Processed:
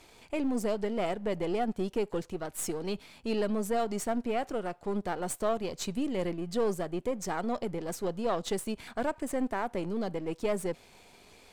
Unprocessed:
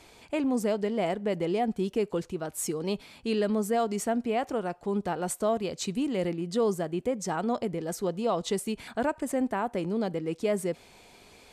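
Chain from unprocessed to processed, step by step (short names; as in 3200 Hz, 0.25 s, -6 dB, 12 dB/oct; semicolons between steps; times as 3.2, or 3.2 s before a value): half-wave gain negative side -7 dB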